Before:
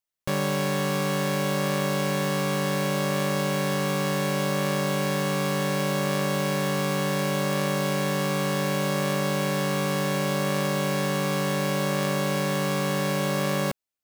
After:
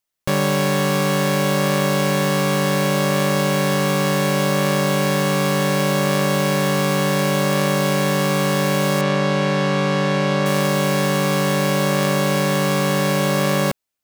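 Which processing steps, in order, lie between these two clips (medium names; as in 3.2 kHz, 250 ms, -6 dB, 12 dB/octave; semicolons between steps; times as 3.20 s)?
9.01–10.46 s: low-pass 4.7 kHz 12 dB/octave; trim +7 dB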